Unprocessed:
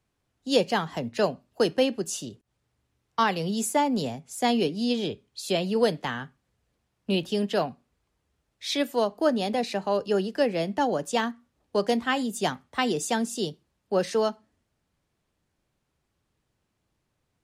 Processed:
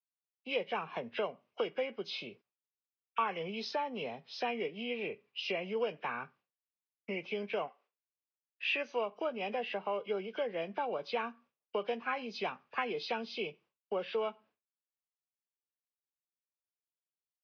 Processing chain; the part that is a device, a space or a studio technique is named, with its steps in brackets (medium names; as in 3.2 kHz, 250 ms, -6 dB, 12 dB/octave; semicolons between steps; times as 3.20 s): 7.67–8.71 s: high-pass 470 Hz -> 160 Hz 24 dB/octave; hearing aid with frequency lowering (knee-point frequency compression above 1.3 kHz 1.5:1; compression 3:1, threshold -31 dBFS, peak gain reduction 11.5 dB; cabinet simulation 260–5200 Hz, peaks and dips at 280 Hz -10 dB, 460 Hz +3 dB, 1.1 kHz +5 dB, 2.6 kHz +7 dB, 4.2 kHz -5 dB); expander -56 dBFS; trim -3 dB